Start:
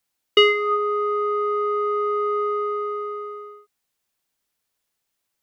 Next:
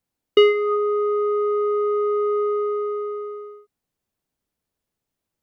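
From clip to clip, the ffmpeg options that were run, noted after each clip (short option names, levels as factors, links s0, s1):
-af "tiltshelf=f=680:g=8"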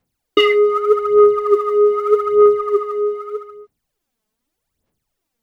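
-af "aphaser=in_gain=1:out_gain=1:delay=4.7:decay=0.72:speed=0.82:type=sinusoidal,volume=1.41"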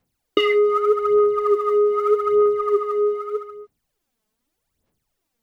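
-af "acompressor=threshold=0.2:ratio=10"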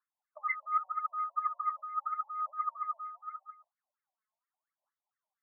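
-af "afftfilt=real='re*between(b*sr/1024,740*pow(1600/740,0.5+0.5*sin(2*PI*4.3*pts/sr))/1.41,740*pow(1600/740,0.5+0.5*sin(2*PI*4.3*pts/sr))*1.41)':imag='im*between(b*sr/1024,740*pow(1600/740,0.5+0.5*sin(2*PI*4.3*pts/sr))/1.41,740*pow(1600/740,0.5+0.5*sin(2*PI*4.3*pts/sr))*1.41)':win_size=1024:overlap=0.75,volume=0.473"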